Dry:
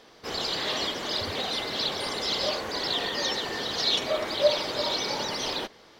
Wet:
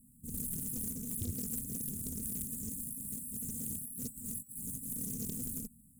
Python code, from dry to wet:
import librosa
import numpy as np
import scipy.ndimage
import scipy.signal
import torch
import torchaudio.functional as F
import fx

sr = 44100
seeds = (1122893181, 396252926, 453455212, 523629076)

y = fx.peak_eq(x, sr, hz=1300.0, db=7.0, octaves=2.5, at=(2.56, 4.84), fade=0.02)
y = fx.over_compress(y, sr, threshold_db=-29.0, ratio=-1.0)
y = np.repeat(y[::6], 6)[:len(y)]
y = fx.brickwall_bandstop(y, sr, low_hz=270.0, high_hz=7000.0)
y = fx.doppler_dist(y, sr, depth_ms=0.81)